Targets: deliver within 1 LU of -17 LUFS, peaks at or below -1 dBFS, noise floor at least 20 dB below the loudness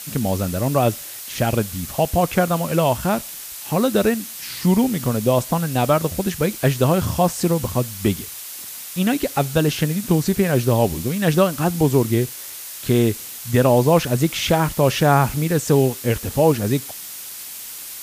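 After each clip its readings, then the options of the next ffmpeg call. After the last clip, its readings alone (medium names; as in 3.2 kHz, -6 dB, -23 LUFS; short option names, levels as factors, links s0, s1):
noise floor -34 dBFS; noise floor target -40 dBFS; loudness -20.0 LUFS; peak level -2.5 dBFS; loudness target -17.0 LUFS
-> -af "afftdn=nr=6:nf=-34"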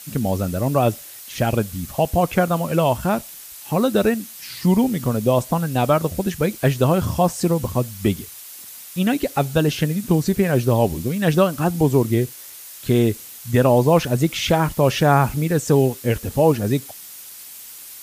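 noise floor -39 dBFS; noise floor target -40 dBFS
-> -af "afftdn=nr=6:nf=-39"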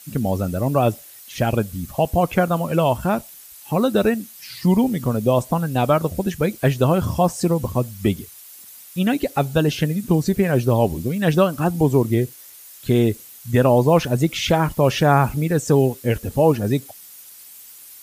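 noise floor -43 dBFS; loudness -20.0 LUFS; peak level -3.0 dBFS; loudness target -17.0 LUFS
-> -af "volume=1.41,alimiter=limit=0.891:level=0:latency=1"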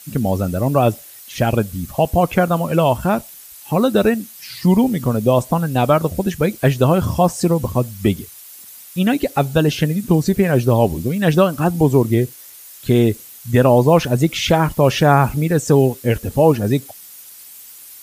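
loudness -17.0 LUFS; peak level -1.0 dBFS; noise floor -40 dBFS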